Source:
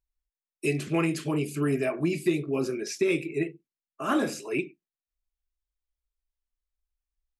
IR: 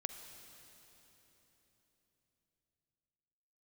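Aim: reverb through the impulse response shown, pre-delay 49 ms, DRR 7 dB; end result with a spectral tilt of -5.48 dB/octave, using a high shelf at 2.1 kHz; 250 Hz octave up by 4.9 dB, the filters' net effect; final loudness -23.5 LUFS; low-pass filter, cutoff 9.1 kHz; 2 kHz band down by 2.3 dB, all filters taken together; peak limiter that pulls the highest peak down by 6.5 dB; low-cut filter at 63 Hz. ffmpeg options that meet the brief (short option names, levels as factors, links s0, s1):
-filter_complex "[0:a]highpass=63,lowpass=9100,equalizer=f=250:t=o:g=7,equalizer=f=2000:t=o:g=-9,highshelf=f=2100:g=8,alimiter=limit=0.15:level=0:latency=1,asplit=2[s0][s1];[1:a]atrim=start_sample=2205,adelay=49[s2];[s1][s2]afir=irnorm=-1:irlink=0,volume=0.501[s3];[s0][s3]amix=inputs=2:normalize=0,volume=1.41"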